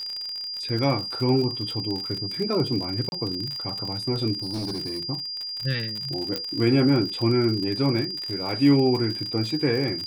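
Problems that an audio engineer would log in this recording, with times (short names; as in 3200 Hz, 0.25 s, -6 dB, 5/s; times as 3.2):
crackle 48/s -28 dBFS
tone 4800 Hz -30 dBFS
3.09–3.12 gap 31 ms
4.33–5.02 clipped -26.5 dBFS
6.36 pop -12 dBFS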